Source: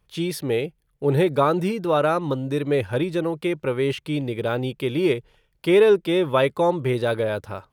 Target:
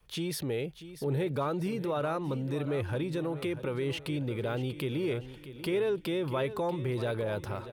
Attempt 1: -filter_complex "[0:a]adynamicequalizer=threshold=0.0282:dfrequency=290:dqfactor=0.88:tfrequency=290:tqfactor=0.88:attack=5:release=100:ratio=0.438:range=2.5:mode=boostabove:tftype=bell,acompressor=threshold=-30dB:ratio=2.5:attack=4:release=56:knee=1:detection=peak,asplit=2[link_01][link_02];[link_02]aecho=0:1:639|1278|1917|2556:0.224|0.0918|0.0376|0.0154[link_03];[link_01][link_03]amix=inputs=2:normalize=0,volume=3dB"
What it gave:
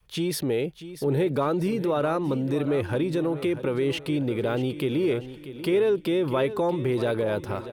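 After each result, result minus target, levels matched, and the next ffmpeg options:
downward compressor: peak gain reduction −4.5 dB; 125 Hz band −3.0 dB
-filter_complex "[0:a]adynamicequalizer=threshold=0.0282:dfrequency=290:dqfactor=0.88:tfrequency=290:tqfactor=0.88:attack=5:release=100:ratio=0.438:range=2.5:mode=boostabove:tftype=bell,acompressor=threshold=-40dB:ratio=2.5:attack=4:release=56:knee=1:detection=peak,asplit=2[link_01][link_02];[link_02]aecho=0:1:639|1278|1917|2556:0.224|0.0918|0.0376|0.0154[link_03];[link_01][link_03]amix=inputs=2:normalize=0,volume=3dB"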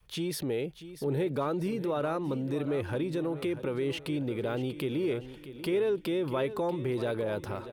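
125 Hz band −3.0 dB
-filter_complex "[0:a]adynamicequalizer=threshold=0.0282:dfrequency=96:dqfactor=0.88:tfrequency=96:tqfactor=0.88:attack=5:release=100:ratio=0.438:range=2.5:mode=boostabove:tftype=bell,acompressor=threshold=-40dB:ratio=2.5:attack=4:release=56:knee=1:detection=peak,asplit=2[link_01][link_02];[link_02]aecho=0:1:639|1278|1917|2556:0.224|0.0918|0.0376|0.0154[link_03];[link_01][link_03]amix=inputs=2:normalize=0,volume=3dB"

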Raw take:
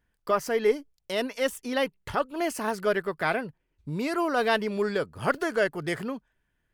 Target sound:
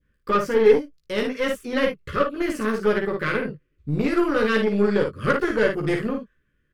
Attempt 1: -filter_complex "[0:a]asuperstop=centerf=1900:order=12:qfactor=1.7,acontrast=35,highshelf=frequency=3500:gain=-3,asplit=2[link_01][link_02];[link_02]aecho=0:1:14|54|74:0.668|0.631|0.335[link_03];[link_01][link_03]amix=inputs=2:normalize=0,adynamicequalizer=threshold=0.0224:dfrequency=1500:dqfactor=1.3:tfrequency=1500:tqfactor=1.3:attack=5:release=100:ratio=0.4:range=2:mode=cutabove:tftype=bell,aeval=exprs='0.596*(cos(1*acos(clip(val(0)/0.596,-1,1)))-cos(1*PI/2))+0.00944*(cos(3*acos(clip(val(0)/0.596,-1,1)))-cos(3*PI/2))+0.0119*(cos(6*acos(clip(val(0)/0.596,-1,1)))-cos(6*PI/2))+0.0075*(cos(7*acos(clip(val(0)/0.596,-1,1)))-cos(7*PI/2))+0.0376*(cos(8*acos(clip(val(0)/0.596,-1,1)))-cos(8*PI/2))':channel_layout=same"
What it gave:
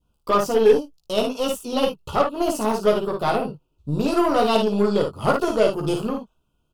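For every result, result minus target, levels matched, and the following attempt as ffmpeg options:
2,000 Hz band −8.0 dB; 8,000 Hz band +7.0 dB
-filter_complex "[0:a]asuperstop=centerf=790:order=12:qfactor=1.7,acontrast=35,highshelf=frequency=3500:gain=-3,asplit=2[link_01][link_02];[link_02]aecho=0:1:14|54|74:0.668|0.631|0.335[link_03];[link_01][link_03]amix=inputs=2:normalize=0,adynamicequalizer=threshold=0.0224:dfrequency=1500:dqfactor=1.3:tfrequency=1500:tqfactor=1.3:attack=5:release=100:ratio=0.4:range=2:mode=cutabove:tftype=bell,aeval=exprs='0.596*(cos(1*acos(clip(val(0)/0.596,-1,1)))-cos(1*PI/2))+0.00944*(cos(3*acos(clip(val(0)/0.596,-1,1)))-cos(3*PI/2))+0.0119*(cos(6*acos(clip(val(0)/0.596,-1,1)))-cos(6*PI/2))+0.0075*(cos(7*acos(clip(val(0)/0.596,-1,1)))-cos(7*PI/2))+0.0376*(cos(8*acos(clip(val(0)/0.596,-1,1)))-cos(8*PI/2))':channel_layout=same"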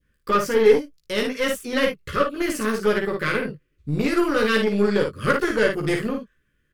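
8,000 Hz band +7.5 dB
-filter_complex "[0:a]asuperstop=centerf=790:order=12:qfactor=1.7,acontrast=35,highshelf=frequency=3500:gain=-13,asplit=2[link_01][link_02];[link_02]aecho=0:1:14|54|74:0.668|0.631|0.335[link_03];[link_01][link_03]amix=inputs=2:normalize=0,adynamicequalizer=threshold=0.0224:dfrequency=1500:dqfactor=1.3:tfrequency=1500:tqfactor=1.3:attack=5:release=100:ratio=0.4:range=2:mode=cutabove:tftype=bell,aeval=exprs='0.596*(cos(1*acos(clip(val(0)/0.596,-1,1)))-cos(1*PI/2))+0.00944*(cos(3*acos(clip(val(0)/0.596,-1,1)))-cos(3*PI/2))+0.0119*(cos(6*acos(clip(val(0)/0.596,-1,1)))-cos(6*PI/2))+0.0075*(cos(7*acos(clip(val(0)/0.596,-1,1)))-cos(7*PI/2))+0.0376*(cos(8*acos(clip(val(0)/0.596,-1,1)))-cos(8*PI/2))':channel_layout=same"

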